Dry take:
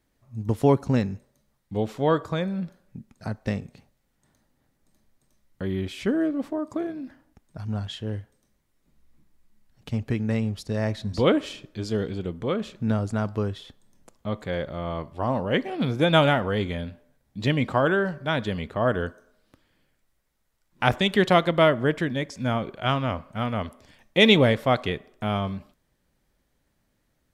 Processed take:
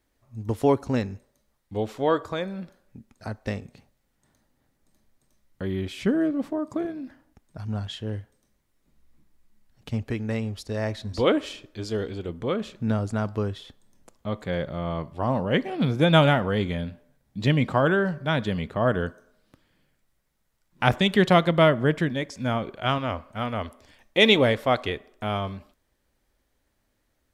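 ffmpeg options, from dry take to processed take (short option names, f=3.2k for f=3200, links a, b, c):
-af "asetnsamples=n=441:p=0,asendcmd='3.65 equalizer g -2;5.96 equalizer g 6;6.85 equalizer g -2;10.02 equalizer g -10.5;12.29 equalizer g -2;14.47 equalizer g 4;22.09 equalizer g -3;22.98 equalizer g -9.5',equalizer=f=160:t=o:w=0.7:g=-9.5"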